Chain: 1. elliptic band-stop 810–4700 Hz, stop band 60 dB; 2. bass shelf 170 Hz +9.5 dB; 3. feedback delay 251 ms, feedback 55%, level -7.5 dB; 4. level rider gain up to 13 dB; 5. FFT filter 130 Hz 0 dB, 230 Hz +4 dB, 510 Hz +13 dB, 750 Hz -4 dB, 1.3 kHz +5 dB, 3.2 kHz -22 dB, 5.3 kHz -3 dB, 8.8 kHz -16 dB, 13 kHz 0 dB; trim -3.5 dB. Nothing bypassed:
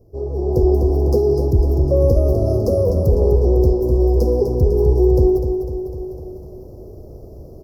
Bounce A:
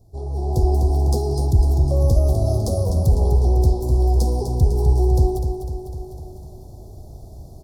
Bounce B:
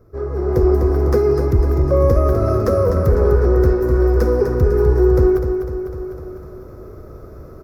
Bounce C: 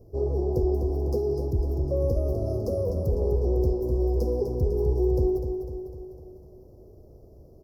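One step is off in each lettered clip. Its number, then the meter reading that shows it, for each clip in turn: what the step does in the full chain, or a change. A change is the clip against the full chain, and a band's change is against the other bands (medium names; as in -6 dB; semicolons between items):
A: 5, 1 kHz band +10.0 dB; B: 1, 1 kHz band +5.0 dB; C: 4, loudness change -9.5 LU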